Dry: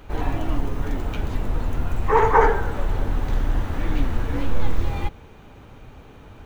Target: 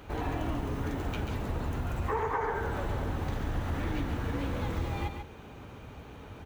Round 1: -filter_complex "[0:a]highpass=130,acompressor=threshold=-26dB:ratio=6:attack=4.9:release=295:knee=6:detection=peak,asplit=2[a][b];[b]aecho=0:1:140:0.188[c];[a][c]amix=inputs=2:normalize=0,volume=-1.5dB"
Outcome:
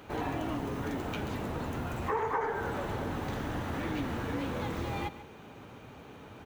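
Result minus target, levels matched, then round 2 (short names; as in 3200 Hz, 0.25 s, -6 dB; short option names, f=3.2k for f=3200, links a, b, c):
echo-to-direct -8 dB; 125 Hz band -3.5 dB
-filter_complex "[0:a]highpass=56,acompressor=threshold=-26dB:ratio=6:attack=4.9:release=295:knee=6:detection=peak,asplit=2[a][b];[b]aecho=0:1:140:0.473[c];[a][c]amix=inputs=2:normalize=0,volume=-1.5dB"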